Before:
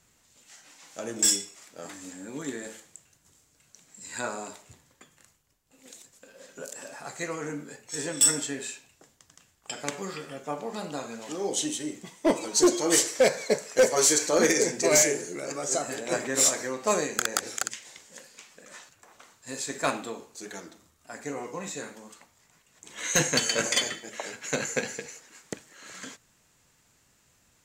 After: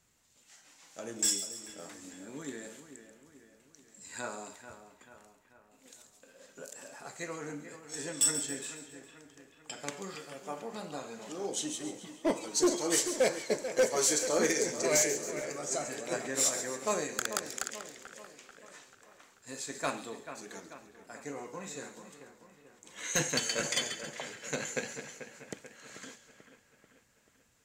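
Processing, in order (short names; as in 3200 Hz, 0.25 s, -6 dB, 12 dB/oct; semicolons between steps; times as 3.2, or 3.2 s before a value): 10.15–10.62 tone controls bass -6 dB, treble +5 dB; split-band echo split 3000 Hz, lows 0.438 s, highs 0.137 s, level -11 dB; gain -6.5 dB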